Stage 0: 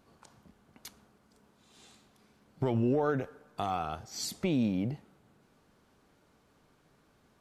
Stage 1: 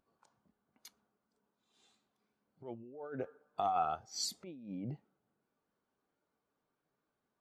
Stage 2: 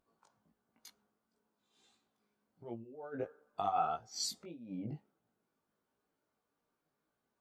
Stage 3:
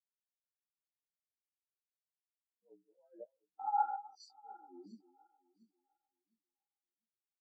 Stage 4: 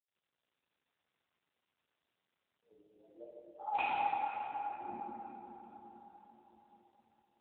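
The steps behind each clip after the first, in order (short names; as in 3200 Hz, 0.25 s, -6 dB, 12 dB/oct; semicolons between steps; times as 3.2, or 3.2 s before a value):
negative-ratio compressor -33 dBFS, ratio -0.5; low shelf 260 Hz -10.5 dB; spectral expander 1.5:1; gain -4.5 dB
chorus 1.5 Hz, delay 17 ms, depth 2.3 ms; gain +3 dB
regenerating reverse delay 0.352 s, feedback 69%, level -6.5 dB; frequency shift +78 Hz; spectral expander 2.5:1
wrapped overs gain 25 dB; plate-style reverb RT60 4.6 s, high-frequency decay 0.45×, DRR -8.5 dB; gain -4 dB; AMR-NB 7.95 kbps 8000 Hz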